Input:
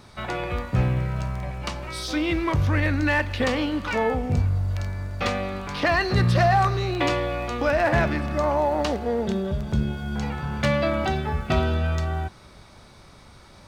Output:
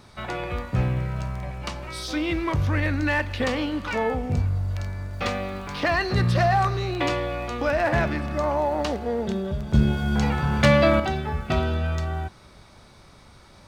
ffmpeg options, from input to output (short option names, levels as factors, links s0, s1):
-filter_complex "[0:a]asettb=1/sr,asplit=3[s0][s1][s2];[s0]atrim=end=5.134[s3];[s1]atrim=start=5.13:end=5.91,asetpts=PTS-STARTPTS,afade=t=in:d=0.004:c=qsin,afade=t=out:st=0.776:d=0.004:c=qsin,acrusher=bits=8:mix=0:aa=0.5[s4];[s2]atrim=start=5.906[s5];[s3][s4]acrossfade=d=0.004:c1=hsin:c2=qsin[s6];[s6][s5]acrossfade=d=0.004:c1=qsin:c2=hsin,asettb=1/sr,asplit=3[s7][s8][s9];[s7]atrim=end=9.744[s10];[s8]atrim=start=9.74:end=11,asetpts=PTS-STARTPTS,afade=t=in:d=0.004:c=qsin,afade=t=out:st=1.256:d=0.004:c=qsin,acontrast=90[s11];[s9]atrim=start=10.996[s12];[s10][s11]acrossfade=d=0.004:c1=hsin:c2=qsin[s13];[s13][s12]acrossfade=d=0.004:c1=qsin:c2=hsin,volume=0.841"